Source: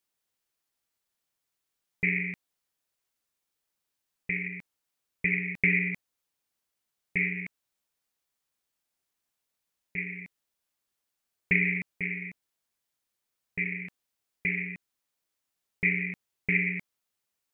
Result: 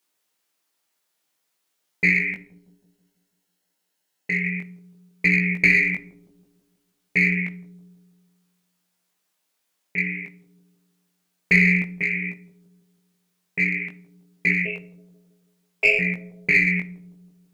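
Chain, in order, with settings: high-pass 200 Hz 12 dB/octave; 14.65–15.99 s: frequency shift +240 Hz; in parallel at -6 dB: one-sided clip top -24.5 dBFS; 2.33–4.44 s: on the sum: comb of notches 1.2 kHz; chorus 0.56 Hz, delay 16.5 ms, depth 5.9 ms; on a send: bucket-brigade echo 162 ms, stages 1024, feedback 55%, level -16.5 dB; on the sum: simulated room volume 650 m³, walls furnished, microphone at 0.53 m; trim +8.5 dB

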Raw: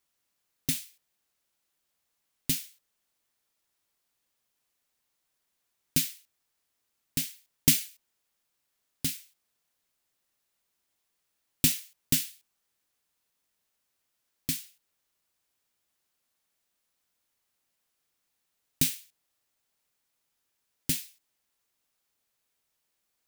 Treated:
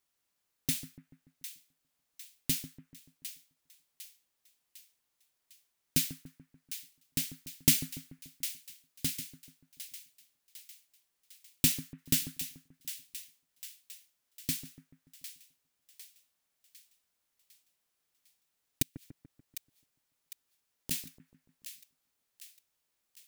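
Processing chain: 18.82–20.91 s: inverted gate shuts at -22 dBFS, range -37 dB; two-band feedback delay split 1.5 kHz, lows 145 ms, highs 753 ms, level -11.5 dB; trim -2.5 dB

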